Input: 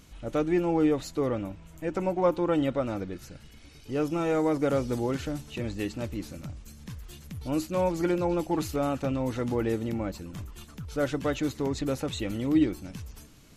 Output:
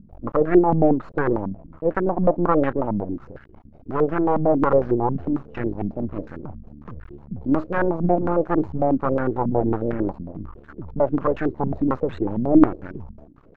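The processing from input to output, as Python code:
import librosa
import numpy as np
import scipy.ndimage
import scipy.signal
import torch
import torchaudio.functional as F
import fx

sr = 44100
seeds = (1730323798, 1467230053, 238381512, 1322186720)

y = np.maximum(x, 0.0)
y = fx.filter_held_lowpass(y, sr, hz=11.0, low_hz=210.0, high_hz=1600.0)
y = y * 10.0 ** (6.5 / 20.0)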